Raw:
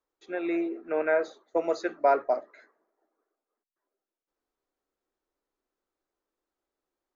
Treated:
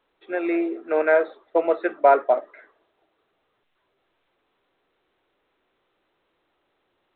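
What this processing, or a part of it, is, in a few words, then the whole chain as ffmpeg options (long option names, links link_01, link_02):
telephone: -af "highpass=290,lowpass=3200,volume=7dB" -ar 8000 -c:a pcm_alaw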